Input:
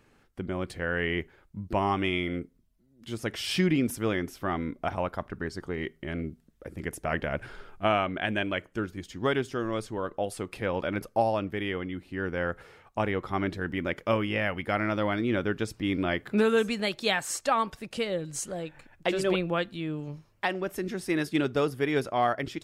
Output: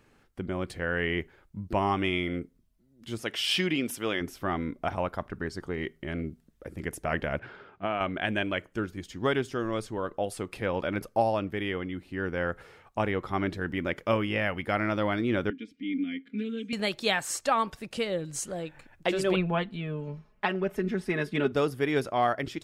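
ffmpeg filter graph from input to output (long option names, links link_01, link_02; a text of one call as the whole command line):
ffmpeg -i in.wav -filter_complex "[0:a]asettb=1/sr,asplit=3[link_01][link_02][link_03];[link_01]atrim=end=3.234[link_04];[link_02]atrim=start=3.23:end=4.21,asetpts=PTS-STARTPTS,afade=type=in:duration=0.004:curve=qsin,afade=type=out:start_time=0.976:duration=0.004:curve=qsin,highpass=frequency=350:poles=1,equalizer=frequency=3000:width_type=o:width=0.58:gain=7[link_05];[link_03]atrim=start=4.206[link_06];[link_04][link_05]acrossfade=duration=0.004:curve1=hsin:curve2=qsin[link_07];[link_07][link_06]acrossfade=duration=0.004:curve1=qsin:curve2=hsin,asettb=1/sr,asplit=3[link_08][link_09][link_10];[link_08]atrim=end=7.394[link_11];[link_09]atrim=start=7.39:end=8.01,asetpts=PTS-STARTPTS,afade=type=in:duration=0.004:curve=qsin,afade=type=out:start_time=0.616:duration=0.004:curve=qsin,acompressor=threshold=-27dB:ratio=2.5:attack=3.2:release=140:knee=1:detection=peak,highpass=120,lowpass=3200[link_12];[link_10]atrim=start=8.006[link_13];[link_11][link_12]acrossfade=duration=0.004:curve1=hsin:curve2=qsin[link_14];[link_14][link_13]acrossfade=duration=0.004:curve1=qsin:curve2=hsin,asettb=1/sr,asplit=3[link_15][link_16][link_17];[link_15]atrim=end=15.504[link_18];[link_16]atrim=start=15.5:end=16.73,asetpts=PTS-STARTPTS,afade=type=in:duration=0.004:curve=qsin,afade=type=out:start_time=1.226:duration=0.004:curve=qsin,aecho=1:1:4.2:0.87,atrim=end_sample=54243,acompressor=mode=upward:threshold=-41dB:ratio=2.5:attack=3.2:release=140:knee=2.83:detection=peak,asplit=3[link_19][link_20][link_21];[link_19]bandpass=frequency=270:width_type=q:width=8,volume=0dB[link_22];[link_20]bandpass=frequency=2290:width_type=q:width=8,volume=-6dB[link_23];[link_21]bandpass=frequency=3010:width_type=q:width=8,volume=-9dB[link_24];[link_22][link_23][link_24]amix=inputs=3:normalize=0[link_25];[link_17]atrim=start=16.726[link_26];[link_18][link_25]acrossfade=duration=0.004:curve1=hsin:curve2=qsin[link_27];[link_27][link_26]acrossfade=duration=0.004:curve1=qsin:curve2=hsin,asettb=1/sr,asplit=3[link_28][link_29][link_30];[link_28]atrim=end=19.364[link_31];[link_29]atrim=start=19.36:end=21.52,asetpts=PTS-STARTPTS,afade=type=in:duration=0.004:curve=qsin,afade=type=out:start_time=2.156:duration=0.004:curve=qsin,bass=frequency=250:gain=1,treble=frequency=4000:gain=-13,aecho=1:1:4.7:0.77,atrim=end_sample=95256[link_32];[link_30]atrim=start=21.516[link_33];[link_31][link_32]acrossfade=duration=0.004:curve1=hsin:curve2=qsin[link_34];[link_34][link_33]acrossfade=duration=0.004:curve1=qsin:curve2=hsin" out.wav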